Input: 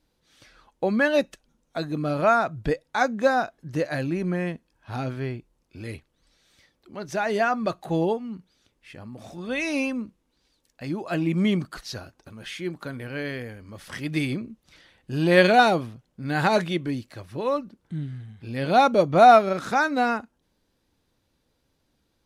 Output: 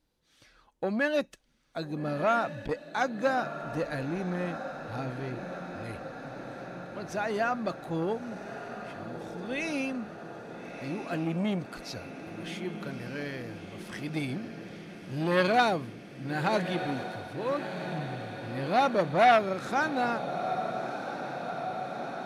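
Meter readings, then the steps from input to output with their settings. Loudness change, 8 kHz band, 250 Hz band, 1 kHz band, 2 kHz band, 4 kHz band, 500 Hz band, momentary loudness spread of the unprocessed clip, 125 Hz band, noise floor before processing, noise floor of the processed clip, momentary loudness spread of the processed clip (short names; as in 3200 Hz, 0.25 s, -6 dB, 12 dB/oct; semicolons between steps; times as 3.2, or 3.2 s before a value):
-7.5 dB, -5.5 dB, -6.0 dB, -6.5 dB, -5.5 dB, -5.5 dB, -6.5 dB, 21 LU, -6.0 dB, -72 dBFS, -61 dBFS, 15 LU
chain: diffused feedback echo 1.305 s, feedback 74%, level -11 dB; core saturation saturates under 1100 Hz; gain -5.5 dB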